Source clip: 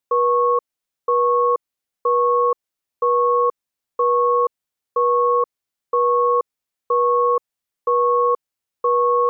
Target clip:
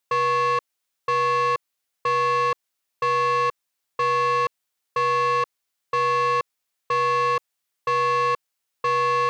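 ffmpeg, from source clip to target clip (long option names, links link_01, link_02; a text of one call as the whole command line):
ffmpeg -i in.wav -af "lowshelf=frequency=460:gain=-10,asoftclip=type=tanh:threshold=-24.5dB,volume=5.5dB" out.wav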